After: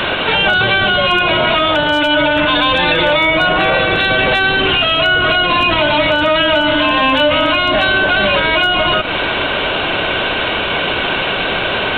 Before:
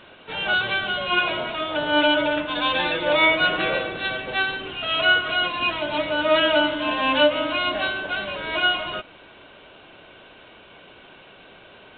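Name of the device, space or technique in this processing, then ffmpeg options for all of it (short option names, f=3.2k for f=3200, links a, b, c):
mastering chain: -filter_complex "[0:a]asettb=1/sr,asplit=3[a][b][c];[a]atrim=end=3.384[d];[b]atrim=start=3.38:end=3.79,asetpts=PTS-STARTPTS,afade=t=in:d=0.004:c=qsin,afade=t=out:st=0.406:d=0.004:c=qsin,equalizer=f=830:t=o:w=0.85:g=7[e];[c]atrim=start=3.786[f];[d][e]acrossfade=d=0.004:c1=hsin:c2=qsin[g];[g][f]acrossfade=d=0.004:c1=qsin:c2=hsin,equalizer=f=260:t=o:w=2.7:g=-3.5,acrossover=split=210|630[h][i][j];[h]acompressor=threshold=-43dB:ratio=4[k];[i]acompressor=threshold=-41dB:ratio=4[l];[j]acompressor=threshold=-33dB:ratio=4[m];[k][l][m]amix=inputs=3:normalize=0,acompressor=threshold=-39dB:ratio=1.5,asoftclip=type=hard:threshold=-26.5dB,alimiter=level_in=35.5dB:limit=-1dB:release=50:level=0:latency=1,volume=-4dB"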